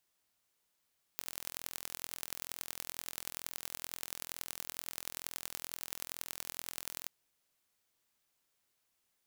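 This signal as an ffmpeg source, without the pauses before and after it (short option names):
-f lavfi -i "aevalsrc='0.299*eq(mod(n,1045),0)*(0.5+0.5*eq(mod(n,4180),0))':d=5.9:s=44100"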